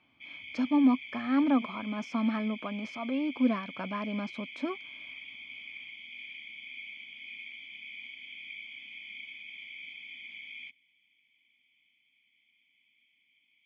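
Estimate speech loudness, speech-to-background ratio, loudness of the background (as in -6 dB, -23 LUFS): -30.5 LUFS, 12.5 dB, -43.0 LUFS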